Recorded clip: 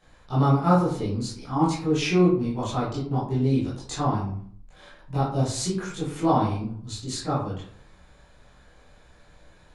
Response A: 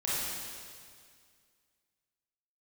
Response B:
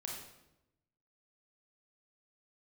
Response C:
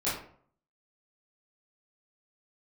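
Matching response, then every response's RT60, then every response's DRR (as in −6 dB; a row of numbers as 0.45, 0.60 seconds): C; 2.0, 0.90, 0.55 seconds; −9.0, −2.0, −11.0 decibels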